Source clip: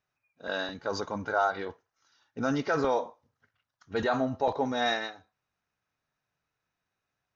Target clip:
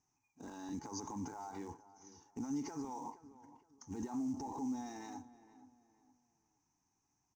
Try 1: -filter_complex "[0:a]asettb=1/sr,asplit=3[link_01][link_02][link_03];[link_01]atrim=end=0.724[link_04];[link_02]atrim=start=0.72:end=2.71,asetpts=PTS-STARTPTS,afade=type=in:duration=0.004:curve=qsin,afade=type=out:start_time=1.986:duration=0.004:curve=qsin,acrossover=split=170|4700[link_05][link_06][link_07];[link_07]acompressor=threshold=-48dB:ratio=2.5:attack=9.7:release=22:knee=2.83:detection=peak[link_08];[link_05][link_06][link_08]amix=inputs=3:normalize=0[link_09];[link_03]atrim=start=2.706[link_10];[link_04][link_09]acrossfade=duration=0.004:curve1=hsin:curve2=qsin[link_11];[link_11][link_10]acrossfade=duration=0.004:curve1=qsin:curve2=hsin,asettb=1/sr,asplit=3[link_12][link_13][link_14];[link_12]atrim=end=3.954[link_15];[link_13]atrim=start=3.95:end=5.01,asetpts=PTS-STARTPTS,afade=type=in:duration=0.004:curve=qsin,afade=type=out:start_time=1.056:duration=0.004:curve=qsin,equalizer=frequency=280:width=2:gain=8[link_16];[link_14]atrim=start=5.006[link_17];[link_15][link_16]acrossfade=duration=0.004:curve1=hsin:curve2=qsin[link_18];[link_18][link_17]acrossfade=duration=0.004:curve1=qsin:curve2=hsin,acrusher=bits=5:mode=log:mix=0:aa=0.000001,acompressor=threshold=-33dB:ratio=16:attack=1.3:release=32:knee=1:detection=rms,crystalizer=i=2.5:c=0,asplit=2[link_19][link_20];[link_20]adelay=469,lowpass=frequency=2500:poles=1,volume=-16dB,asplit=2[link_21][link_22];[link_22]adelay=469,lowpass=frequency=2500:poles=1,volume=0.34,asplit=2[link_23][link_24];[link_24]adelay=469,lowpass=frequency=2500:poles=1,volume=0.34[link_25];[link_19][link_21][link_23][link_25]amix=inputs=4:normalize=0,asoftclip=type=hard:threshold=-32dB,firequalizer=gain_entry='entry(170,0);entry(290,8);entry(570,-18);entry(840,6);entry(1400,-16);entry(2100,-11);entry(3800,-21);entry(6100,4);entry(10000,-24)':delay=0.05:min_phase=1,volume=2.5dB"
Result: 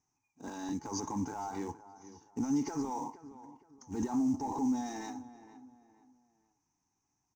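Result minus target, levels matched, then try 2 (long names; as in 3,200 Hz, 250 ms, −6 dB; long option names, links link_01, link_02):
downward compressor: peak gain reduction −8.5 dB
-filter_complex "[0:a]asettb=1/sr,asplit=3[link_01][link_02][link_03];[link_01]atrim=end=0.724[link_04];[link_02]atrim=start=0.72:end=2.71,asetpts=PTS-STARTPTS,afade=type=in:duration=0.004:curve=qsin,afade=type=out:start_time=1.986:duration=0.004:curve=qsin,acrossover=split=170|4700[link_05][link_06][link_07];[link_07]acompressor=threshold=-48dB:ratio=2.5:attack=9.7:release=22:knee=2.83:detection=peak[link_08];[link_05][link_06][link_08]amix=inputs=3:normalize=0[link_09];[link_03]atrim=start=2.706[link_10];[link_04][link_09]acrossfade=duration=0.004:curve1=hsin:curve2=qsin[link_11];[link_11][link_10]acrossfade=duration=0.004:curve1=qsin:curve2=hsin,asettb=1/sr,asplit=3[link_12][link_13][link_14];[link_12]atrim=end=3.954[link_15];[link_13]atrim=start=3.95:end=5.01,asetpts=PTS-STARTPTS,afade=type=in:duration=0.004:curve=qsin,afade=type=out:start_time=1.056:duration=0.004:curve=qsin,equalizer=frequency=280:width=2:gain=8[link_16];[link_14]atrim=start=5.006[link_17];[link_15][link_16]acrossfade=duration=0.004:curve1=hsin:curve2=qsin[link_18];[link_18][link_17]acrossfade=duration=0.004:curve1=qsin:curve2=hsin,acrusher=bits=5:mode=log:mix=0:aa=0.000001,acompressor=threshold=-42dB:ratio=16:attack=1.3:release=32:knee=1:detection=rms,crystalizer=i=2.5:c=0,asplit=2[link_19][link_20];[link_20]adelay=469,lowpass=frequency=2500:poles=1,volume=-16dB,asplit=2[link_21][link_22];[link_22]adelay=469,lowpass=frequency=2500:poles=1,volume=0.34,asplit=2[link_23][link_24];[link_24]adelay=469,lowpass=frequency=2500:poles=1,volume=0.34[link_25];[link_19][link_21][link_23][link_25]amix=inputs=4:normalize=0,asoftclip=type=hard:threshold=-32dB,firequalizer=gain_entry='entry(170,0);entry(290,8);entry(570,-18);entry(840,6);entry(1400,-16);entry(2100,-11);entry(3800,-21);entry(6100,4);entry(10000,-24)':delay=0.05:min_phase=1,volume=2.5dB"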